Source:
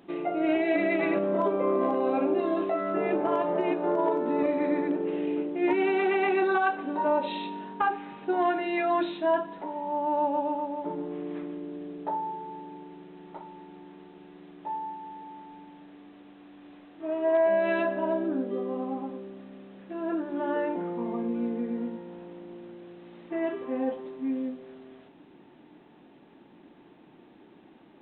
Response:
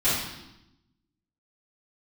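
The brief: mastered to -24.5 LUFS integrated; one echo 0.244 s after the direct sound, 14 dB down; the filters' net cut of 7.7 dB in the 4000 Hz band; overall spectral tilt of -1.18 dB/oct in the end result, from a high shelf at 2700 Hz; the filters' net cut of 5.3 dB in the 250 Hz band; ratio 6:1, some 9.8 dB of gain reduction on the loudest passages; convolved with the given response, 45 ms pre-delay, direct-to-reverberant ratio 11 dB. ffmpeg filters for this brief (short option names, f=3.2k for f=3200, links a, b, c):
-filter_complex "[0:a]equalizer=f=250:t=o:g=-7.5,highshelf=f=2.7k:g=-6,equalizer=f=4k:t=o:g=-6,acompressor=threshold=-33dB:ratio=6,aecho=1:1:244:0.2,asplit=2[a][b];[1:a]atrim=start_sample=2205,adelay=45[c];[b][c]afir=irnorm=-1:irlink=0,volume=-25dB[d];[a][d]amix=inputs=2:normalize=0,volume=13dB"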